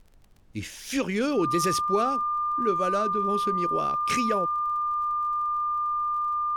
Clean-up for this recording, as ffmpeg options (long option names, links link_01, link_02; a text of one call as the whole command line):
ffmpeg -i in.wav -af "adeclick=threshold=4,bandreject=frequency=1200:width=30,agate=range=-21dB:threshold=-35dB" out.wav